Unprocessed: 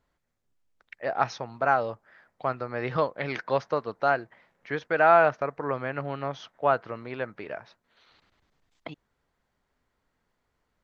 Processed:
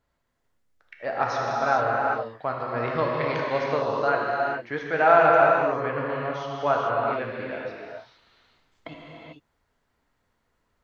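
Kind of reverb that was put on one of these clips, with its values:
reverb whose tail is shaped and stops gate 470 ms flat, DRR −3.5 dB
level −1.5 dB

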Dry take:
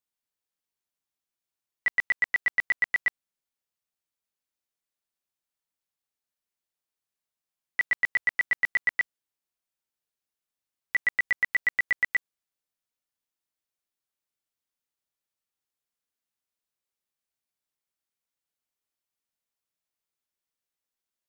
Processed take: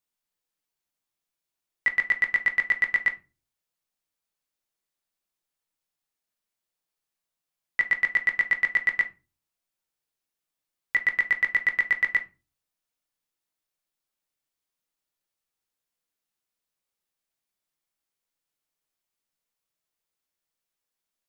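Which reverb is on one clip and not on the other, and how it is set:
rectangular room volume 120 cubic metres, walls furnished, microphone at 0.61 metres
level +2 dB

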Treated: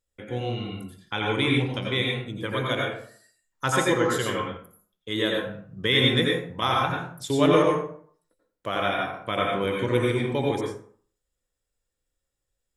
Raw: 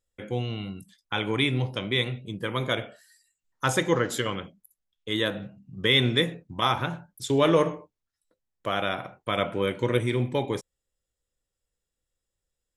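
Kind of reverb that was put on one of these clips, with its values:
dense smooth reverb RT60 0.5 s, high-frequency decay 0.6×, pre-delay 75 ms, DRR −1.5 dB
level −1.5 dB

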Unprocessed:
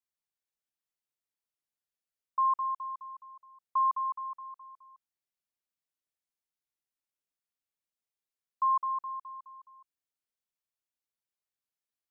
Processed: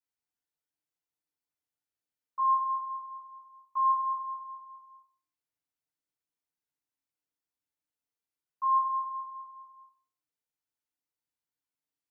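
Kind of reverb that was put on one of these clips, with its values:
feedback delay network reverb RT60 0.44 s, low-frequency decay 1.35×, high-frequency decay 0.55×, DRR −5.5 dB
level −7.5 dB

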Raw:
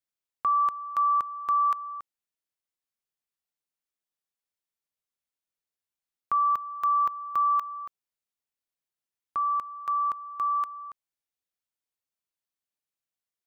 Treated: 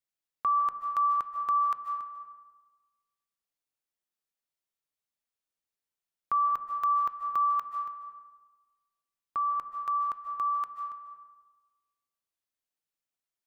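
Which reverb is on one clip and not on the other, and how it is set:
comb and all-pass reverb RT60 1.3 s, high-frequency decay 0.5×, pre-delay 110 ms, DRR 5.5 dB
level −2 dB

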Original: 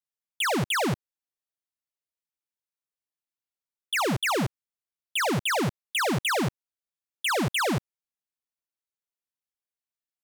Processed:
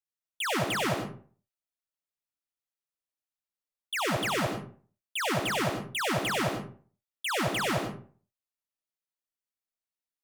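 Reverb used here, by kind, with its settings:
comb and all-pass reverb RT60 0.44 s, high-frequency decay 0.6×, pre-delay 55 ms, DRR 0.5 dB
level −5.5 dB

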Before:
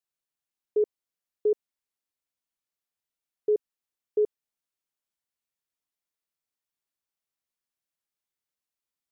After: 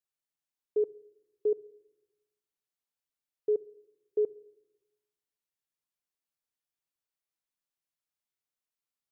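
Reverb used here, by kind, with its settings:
rectangular room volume 3,400 cubic metres, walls furnished, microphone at 0.4 metres
level −4 dB

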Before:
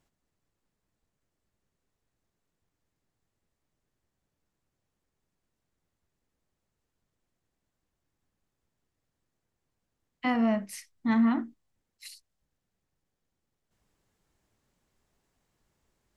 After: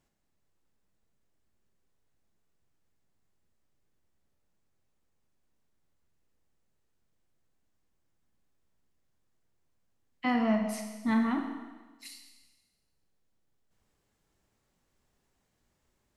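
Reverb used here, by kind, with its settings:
four-comb reverb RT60 1.3 s, combs from 29 ms, DRR 4 dB
level −1.5 dB

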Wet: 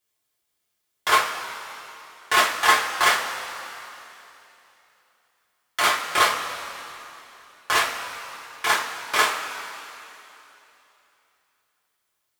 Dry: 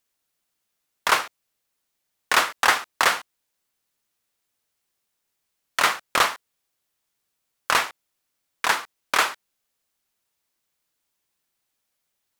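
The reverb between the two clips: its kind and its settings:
coupled-rooms reverb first 0.22 s, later 3.1 s, from −18 dB, DRR −7 dB
level −6.5 dB

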